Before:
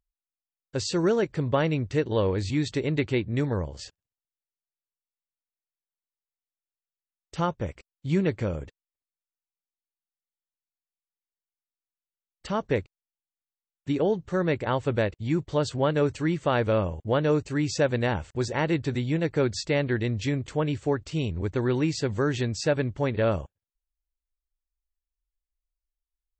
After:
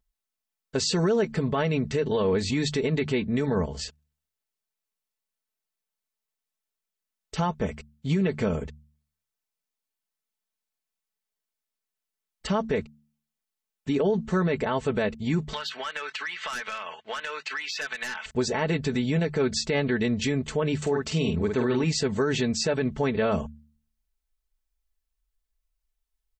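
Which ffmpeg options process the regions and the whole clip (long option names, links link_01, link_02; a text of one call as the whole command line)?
ffmpeg -i in.wav -filter_complex "[0:a]asettb=1/sr,asplit=3[link_01][link_02][link_03];[link_01]atrim=end=15.534[link_04];[link_02]atrim=start=15.53:end=18.26,asetpts=PTS-STARTPTS,afade=type=in:duration=0.004:curve=qsin,afade=type=out:start_time=2.726:duration=0.004:curve=qsin,asuperpass=centerf=2300:order=4:qfactor=0.92,aeval=exprs='0.15*sin(PI/2*3.16*val(0)/0.15)':channel_layout=same,acompressor=threshold=-35dB:ratio=12:attack=3.2:release=140:knee=1:detection=peak[link_05];[link_03]atrim=start=18.256[link_06];[link_04][link_05]acrossfade=duration=0.004:curve1=hsin:curve2=qsin[link_07];[link_07][link_06]acrossfade=duration=0.004:curve1=qsin:curve2=hsin,asettb=1/sr,asplit=3[link_08][link_09][link_10];[link_08]atrim=end=20.824[link_11];[link_09]atrim=start=20.82:end=21.84,asetpts=PTS-STARTPTS,afade=type=in:duration=0.004:curve=qsin,afade=type=out:start_time=1.016:duration=0.004:curve=qsin,highpass=83,acompressor=mode=upward:threshold=-33dB:ratio=2.5:attack=3.2:release=140:knee=2.83:detection=peak,asplit=2[link_12][link_13];[link_13]adelay=49,volume=-6dB[link_14];[link_12][link_14]amix=inputs=2:normalize=0,atrim=end_sample=44982[link_15];[link_10]atrim=start=21.836[link_16];[link_11][link_15]acrossfade=duration=0.004:curve1=hsin:curve2=qsin[link_17];[link_17][link_16]acrossfade=duration=0.004:curve1=qsin:curve2=hsin,aecho=1:1:4.6:0.7,bandreject=frequency=74.52:width_type=h:width=4,bandreject=frequency=149.04:width_type=h:width=4,bandreject=frequency=223.56:width_type=h:width=4,alimiter=limit=-21dB:level=0:latency=1:release=59,volume=4.5dB" out.wav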